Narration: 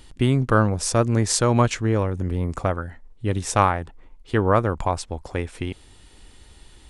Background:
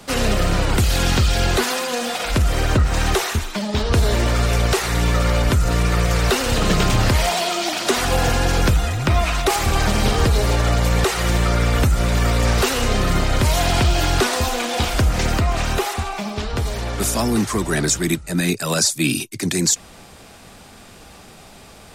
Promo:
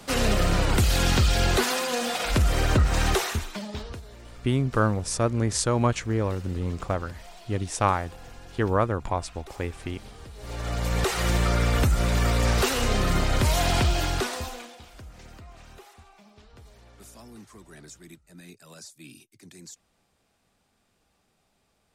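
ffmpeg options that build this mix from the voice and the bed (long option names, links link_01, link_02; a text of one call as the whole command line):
ffmpeg -i stem1.wav -i stem2.wav -filter_complex "[0:a]adelay=4250,volume=-4.5dB[link_01];[1:a]volume=19dB,afade=type=out:start_time=3.07:duration=0.95:silence=0.0630957,afade=type=in:start_time=10.37:duration=0.84:silence=0.0707946,afade=type=out:start_time=13.76:duration=1.02:silence=0.0749894[link_02];[link_01][link_02]amix=inputs=2:normalize=0" out.wav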